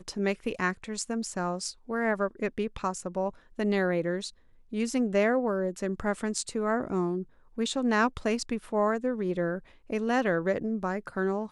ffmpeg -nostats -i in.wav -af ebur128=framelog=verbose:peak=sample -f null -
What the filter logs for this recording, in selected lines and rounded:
Integrated loudness:
  I:         -29.8 LUFS
  Threshold: -39.9 LUFS
Loudness range:
  LRA:         2.6 LU
  Threshold: -49.7 LUFS
  LRA low:   -31.3 LUFS
  LRA high:  -28.7 LUFS
Sample peak:
  Peak:      -11.6 dBFS